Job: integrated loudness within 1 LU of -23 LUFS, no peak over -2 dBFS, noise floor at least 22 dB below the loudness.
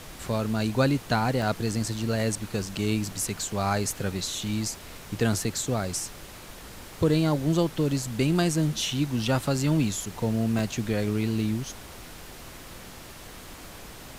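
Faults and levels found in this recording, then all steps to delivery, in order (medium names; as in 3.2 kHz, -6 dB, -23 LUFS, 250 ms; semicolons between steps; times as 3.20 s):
dropouts 4; longest dropout 1.2 ms; noise floor -44 dBFS; noise floor target -49 dBFS; loudness -27.0 LUFS; peak level -10.5 dBFS; loudness target -23.0 LUFS
-> interpolate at 1.42/2.68/8.91/10.59 s, 1.2 ms; noise print and reduce 6 dB; trim +4 dB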